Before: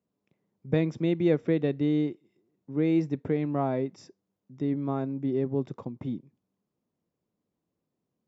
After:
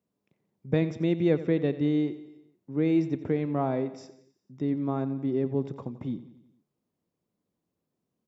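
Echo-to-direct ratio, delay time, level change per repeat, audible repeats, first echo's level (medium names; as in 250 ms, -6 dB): -13.5 dB, 89 ms, -5.0 dB, 4, -15.0 dB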